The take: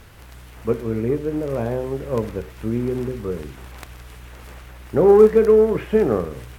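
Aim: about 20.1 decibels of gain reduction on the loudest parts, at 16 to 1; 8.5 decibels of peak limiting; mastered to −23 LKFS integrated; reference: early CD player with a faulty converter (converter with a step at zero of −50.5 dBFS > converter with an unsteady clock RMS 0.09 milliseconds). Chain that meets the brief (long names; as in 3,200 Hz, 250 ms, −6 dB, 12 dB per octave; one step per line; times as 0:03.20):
downward compressor 16 to 1, threshold −27 dBFS
brickwall limiter −24 dBFS
converter with a step at zero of −50.5 dBFS
converter with an unsteady clock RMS 0.09 ms
level +11.5 dB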